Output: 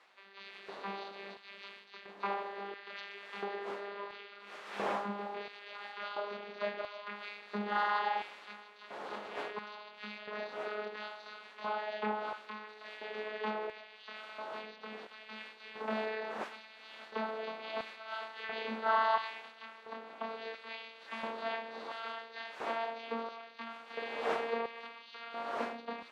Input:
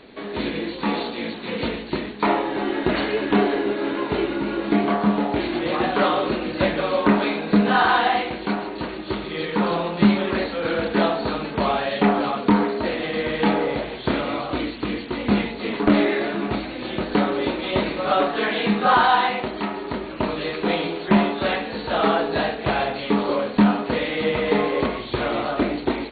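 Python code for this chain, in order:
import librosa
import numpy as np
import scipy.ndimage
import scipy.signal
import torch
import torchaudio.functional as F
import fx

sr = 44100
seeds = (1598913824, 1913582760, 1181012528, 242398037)

y = fx.vocoder_glide(x, sr, note=55, semitones=3)
y = fx.dmg_wind(y, sr, seeds[0], corner_hz=510.0, level_db=-37.0)
y = fx.filter_lfo_highpass(y, sr, shape='square', hz=0.73, low_hz=800.0, high_hz=1800.0, q=0.72)
y = F.gain(torch.from_numpy(y), -3.0).numpy()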